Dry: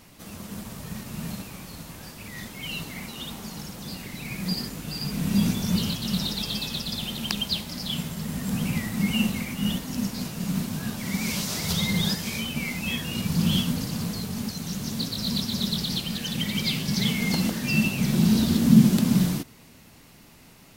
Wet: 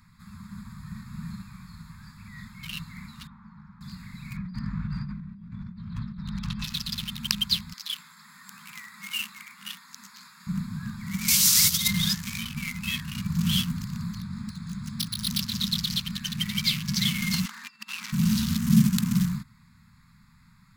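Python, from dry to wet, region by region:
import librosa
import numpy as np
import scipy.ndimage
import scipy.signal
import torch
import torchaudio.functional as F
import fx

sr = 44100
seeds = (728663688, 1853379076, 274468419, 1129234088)

y = fx.chain(x, sr, fx.lowpass(hz=1200.0, slope=12),
    fx.low_shelf(hz=290.0, db=-9.5), at=(3.27, 3.81))
y = fx.chain(y, sr, fx.lowpass(hz=2200.0, slope=12),
    fx.low_shelf(hz=250.0, db=4.5),
    fx.over_compress(threshold_db=-33.0, ratio=-1.0), at=(4.36, 6.64))
y = fx.chain(y, sr, fx.highpass(hz=820.0, slope=12),
    fx.clip_hard(threshold_db=-25.5), at=(7.73, 10.47))
y = fx.chain(y, sr, fx.high_shelf(hz=3700.0, db=11.0),
    fx.over_compress(threshold_db=-24.0, ratio=-0.5), at=(11.28, 11.88))
y = fx.chain(y, sr, fx.resample_bad(factor=3, down='filtered', up='hold'),
    fx.doppler_dist(depth_ms=0.32), at=(14.17, 15.4))
y = fx.chain(y, sr, fx.highpass(hz=410.0, slope=24),
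    fx.high_shelf(hz=9400.0, db=-11.5),
    fx.over_compress(threshold_db=-34.0, ratio=-0.5), at=(17.45, 18.12))
y = fx.wiener(y, sr, points=15)
y = scipy.signal.sosfilt(scipy.signal.cheby2(4, 40, [310.0, 710.0], 'bandstop', fs=sr, output='sos'), y)
y = fx.high_shelf(y, sr, hz=2600.0, db=8.0)
y = y * librosa.db_to_amplitude(-1.5)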